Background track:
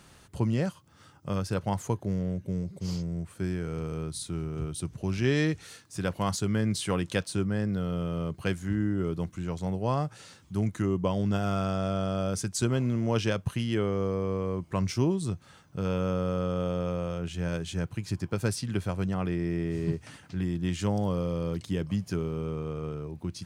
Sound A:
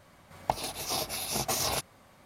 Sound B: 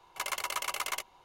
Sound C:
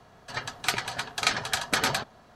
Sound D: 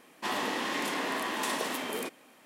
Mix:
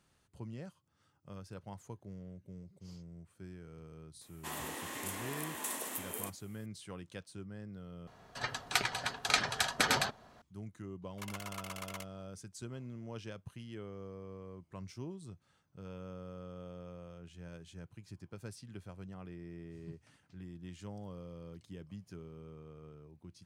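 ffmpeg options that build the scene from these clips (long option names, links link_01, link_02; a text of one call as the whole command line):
ffmpeg -i bed.wav -i cue0.wav -i cue1.wav -i cue2.wav -i cue3.wav -filter_complex "[0:a]volume=-18dB[link_01];[4:a]aexciter=amount=4.5:drive=5.5:freq=6800[link_02];[link_01]asplit=2[link_03][link_04];[link_03]atrim=end=8.074[link_05];[3:a]atrim=end=2.35,asetpts=PTS-STARTPTS,volume=-4dB[link_06];[link_04]atrim=start=10.416[link_07];[link_02]atrim=end=2.45,asetpts=PTS-STARTPTS,volume=-11.5dB,afade=type=in:duration=0.004:curve=hsin,afade=type=out:start_time=2.446:duration=0.004:curve=hsin,adelay=185661S[link_08];[2:a]atrim=end=1.24,asetpts=PTS-STARTPTS,volume=-11.5dB,afade=type=in:duration=0.004:curve=hsin,afade=type=out:start_time=1.236:duration=0.004:curve=hsin,adelay=11020[link_09];[link_05][link_06]acrossfade=duration=0.004:curve1=hsin:curve2=hsin[link_10];[link_10][link_07]acrossfade=duration=0.004:curve1=hsin:curve2=hsin[link_11];[link_11][link_08][link_09]amix=inputs=3:normalize=0" out.wav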